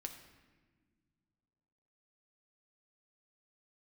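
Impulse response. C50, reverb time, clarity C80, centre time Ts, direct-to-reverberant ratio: 8.5 dB, no single decay rate, 10.0 dB, 21 ms, 3.5 dB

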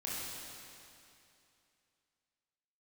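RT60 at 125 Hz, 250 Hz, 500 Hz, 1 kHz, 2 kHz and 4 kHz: 2.7 s, 2.7 s, 2.7 s, 2.7 s, 2.7 s, 2.6 s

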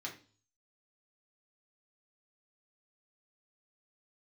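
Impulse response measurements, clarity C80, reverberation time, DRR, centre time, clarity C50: 15.5 dB, 0.40 s, -2.5 dB, 17 ms, 10.5 dB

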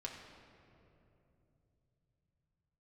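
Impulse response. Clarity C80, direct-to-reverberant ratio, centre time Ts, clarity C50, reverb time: 5.0 dB, -1.5 dB, 68 ms, 3.5 dB, 3.0 s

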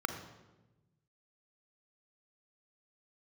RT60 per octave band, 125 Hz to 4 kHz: 1.8 s, 1.5 s, 1.2 s, 0.95 s, 0.90 s, 0.80 s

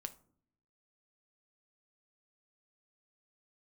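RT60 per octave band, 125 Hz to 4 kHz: 1.0 s, 0.95 s, 0.65 s, 0.50 s, 0.35 s, 0.25 s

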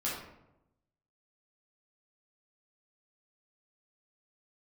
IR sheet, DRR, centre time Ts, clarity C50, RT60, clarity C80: -7.5 dB, 55 ms, 1.5 dB, 0.90 s, 5.5 dB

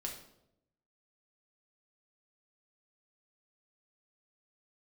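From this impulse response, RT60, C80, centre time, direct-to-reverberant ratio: 0.80 s, 10.0 dB, 26 ms, 0.0 dB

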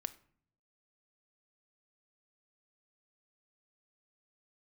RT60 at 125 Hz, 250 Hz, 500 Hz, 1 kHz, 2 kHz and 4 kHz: 1.1 s, 0.85 s, 0.60 s, 0.50 s, 0.45 s, 0.35 s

